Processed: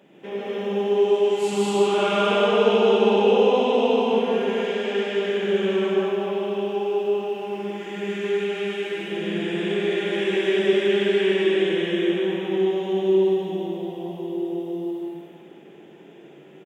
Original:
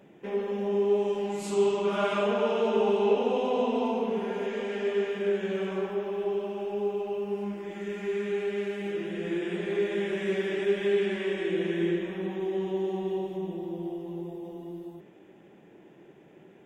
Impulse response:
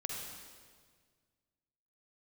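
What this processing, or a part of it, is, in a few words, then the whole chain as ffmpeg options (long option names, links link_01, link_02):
stadium PA: -filter_complex "[0:a]highpass=180,equalizer=frequency=3200:width_type=o:width=0.55:gain=6,aecho=1:1:151.6|207:0.708|0.708[link_01];[1:a]atrim=start_sample=2205[link_02];[link_01][link_02]afir=irnorm=-1:irlink=0,volume=3dB"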